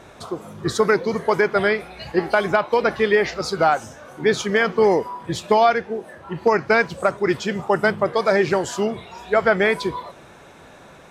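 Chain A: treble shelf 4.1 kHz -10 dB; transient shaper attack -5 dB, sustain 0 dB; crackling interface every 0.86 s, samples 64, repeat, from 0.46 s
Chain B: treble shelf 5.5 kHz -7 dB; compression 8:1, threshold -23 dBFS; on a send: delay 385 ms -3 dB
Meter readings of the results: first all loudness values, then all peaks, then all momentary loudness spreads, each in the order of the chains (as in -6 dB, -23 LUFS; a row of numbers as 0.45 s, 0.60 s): -22.5 LUFS, -27.0 LUFS; -7.0 dBFS, -9.0 dBFS; 13 LU, 5 LU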